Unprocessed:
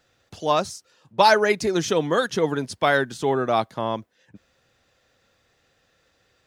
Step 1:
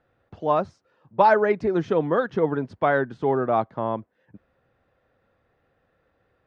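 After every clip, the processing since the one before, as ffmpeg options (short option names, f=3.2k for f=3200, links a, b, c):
-af "lowpass=1.4k"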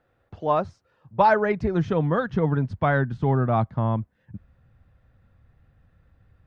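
-af "asubboost=boost=11.5:cutoff=130"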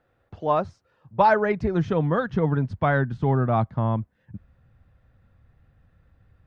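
-af anull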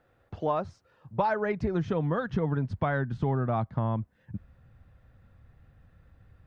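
-af "acompressor=threshold=-27dB:ratio=4,volume=1.5dB"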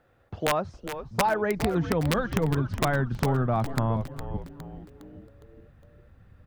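-filter_complex "[0:a]aeval=exprs='(mod(7.5*val(0)+1,2)-1)/7.5':c=same,asplit=6[a][b][c][d][e][f];[b]adelay=410,afreqshift=-140,volume=-10dB[g];[c]adelay=820,afreqshift=-280,volume=-16.6dB[h];[d]adelay=1230,afreqshift=-420,volume=-23.1dB[i];[e]adelay=1640,afreqshift=-560,volume=-29.7dB[j];[f]adelay=2050,afreqshift=-700,volume=-36.2dB[k];[a][g][h][i][j][k]amix=inputs=6:normalize=0,volume=2.5dB"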